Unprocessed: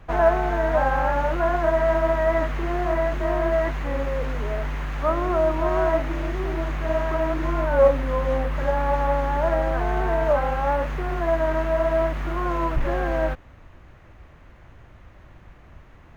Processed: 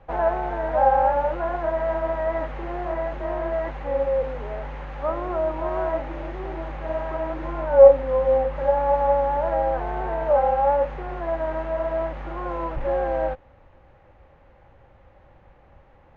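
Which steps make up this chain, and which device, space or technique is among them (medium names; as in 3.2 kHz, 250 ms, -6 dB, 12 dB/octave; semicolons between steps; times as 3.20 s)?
inside a cardboard box (low-pass 4.2 kHz 12 dB/octave; small resonant body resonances 540/800 Hz, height 14 dB, ringing for 40 ms); trim -7 dB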